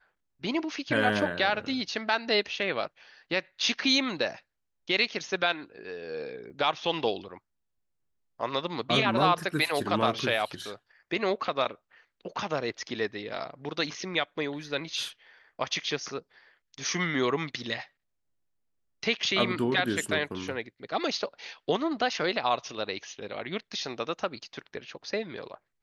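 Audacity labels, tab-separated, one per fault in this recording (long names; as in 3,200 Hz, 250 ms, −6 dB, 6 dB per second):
6.500000	6.510000	drop-out 5.3 ms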